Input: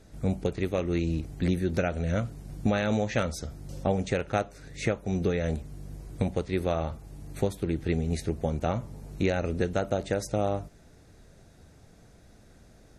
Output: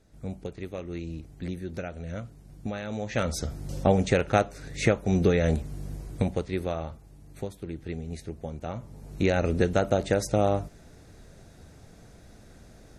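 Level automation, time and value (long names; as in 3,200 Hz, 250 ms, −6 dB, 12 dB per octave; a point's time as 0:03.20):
0:02.92 −8 dB
0:03.37 +5 dB
0:05.87 +5 dB
0:07.20 −7.5 dB
0:08.64 −7.5 dB
0:09.39 +4 dB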